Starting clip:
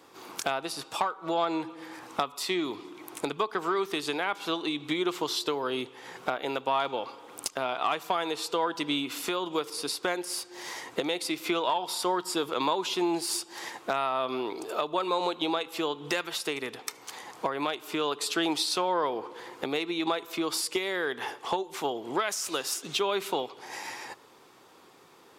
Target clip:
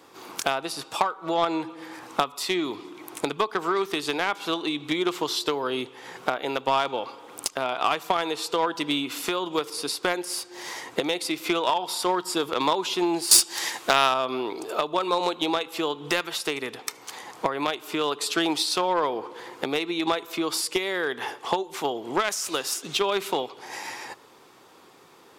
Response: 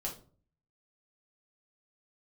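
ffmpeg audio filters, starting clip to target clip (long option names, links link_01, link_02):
-filter_complex "[0:a]asettb=1/sr,asplit=3[link_01][link_02][link_03];[link_01]atrim=end=13.314[link_04];[link_02]atrim=start=13.31:end=14.14,asetpts=PTS-STARTPTS,afade=type=in:duration=0.004:curve=qsin,afade=type=out:start_time=0.826:duration=0.004:curve=qsin,highshelf=frequency=2000:gain=11.5[link_05];[link_03]atrim=start=14.136[link_06];[link_04][link_05]acrossfade=duration=0.004:curve1=hsin:curve2=qsin[link_07];[link_07][link_06]acrossfade=duration=0.004:curve1=qsin:curve2=hsin,asplit=2[link_08][link_09];[link_09]acrusher=bits=2:mix=0:aa=0.5,volume=-4.5dB[link_10];[link_08][link_10]amix=inputs=2:normalize=0,volume=3dB"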